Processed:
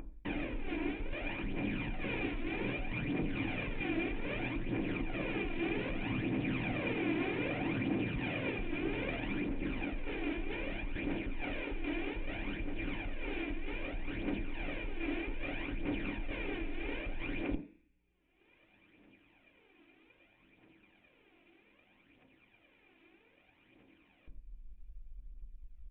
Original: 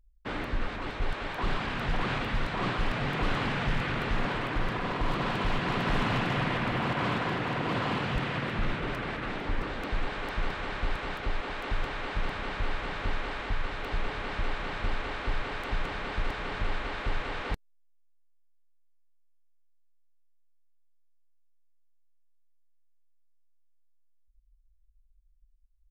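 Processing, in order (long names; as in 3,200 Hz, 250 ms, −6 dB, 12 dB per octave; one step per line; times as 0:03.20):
lower of the sound and its delayed copy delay 0.41 ms
phase shifter 0.63 Hz, delay 3.1 ms, feedback 56%
brickwall limiter −22 dBFS, peak gain reduction 9 dB
reversed playback
downward compressor 16 to 1, threshold −40 dBFS, peak gain reduction 16 dB
reversed playback
low-pass that shuts in the quiet parts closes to 2,900 Hz
upward compression, threshold −44 dBFS
hollow resonant body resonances 310/2,400 Hz, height 13 dB, ringing for 40 ms
leveller curve on the samples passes 1
on a send at −7 dB: convolution reverb RT60 0.50 s, pre-delay 3 ms
on the sum: downsampling to 8,000 Hz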